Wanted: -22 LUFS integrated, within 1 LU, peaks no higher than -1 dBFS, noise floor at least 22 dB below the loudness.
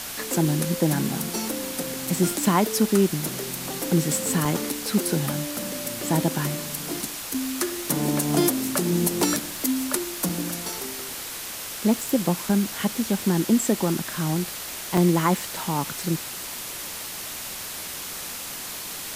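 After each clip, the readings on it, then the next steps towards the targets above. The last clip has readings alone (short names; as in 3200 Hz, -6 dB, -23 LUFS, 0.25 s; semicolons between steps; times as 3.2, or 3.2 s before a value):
dropouts 6; longest dropout 3.3 ms; noise floor -35 dBFS; noise floor target -47 dBFS; loudness -25.0 LUFS; peak -6.0 dBFS; loudness target -22.0 LUFS
-> interpolate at 2.07/4.45/7.34/10.29/12.49/14.97, 3.3 ms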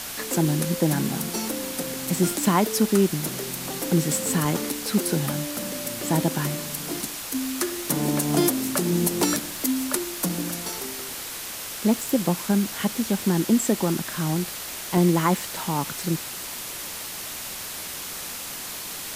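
dropouts 0; noise floor -35 dBFS; noise floor target -47 dBFS
-> denoiser 12 dB, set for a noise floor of -35 dBFS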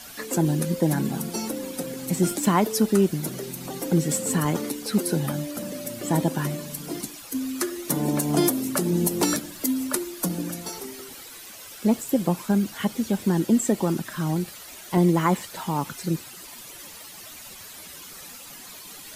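noise floor -43 dBFS; noise floor target -48 dBFS
-> denoiser 6 dB, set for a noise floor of -43 dBFS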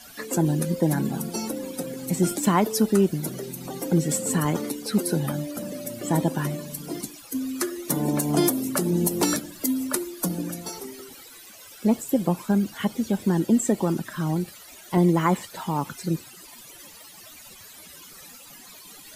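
noise floor -46 dBFS; noise floor target -48 dBFS
-> denoiser 6 dB, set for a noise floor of -46 dBFS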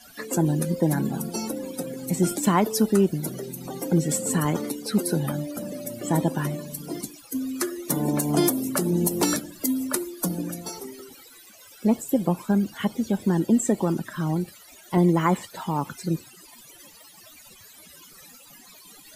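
noise floor -50 dBFS; loudness -25.5 LUFS; peak -7.0 dBFS; loudness target -22.0 LUFS
-> gain +3.5 dB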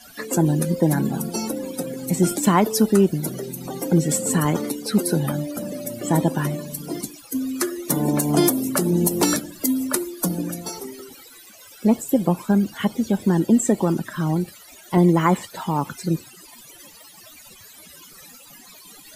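loudness -22.0 LUFS; peak -3.5 dBFS; noise floor -46 dBFS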